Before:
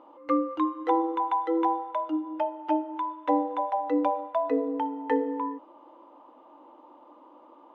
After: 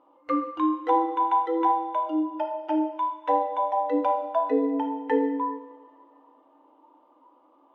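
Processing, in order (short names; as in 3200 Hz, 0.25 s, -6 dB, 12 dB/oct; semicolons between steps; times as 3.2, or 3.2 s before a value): spectral noise reduction 9 dB; two-slope reverb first 0.82 s, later 2.7 s, DRR 3 dB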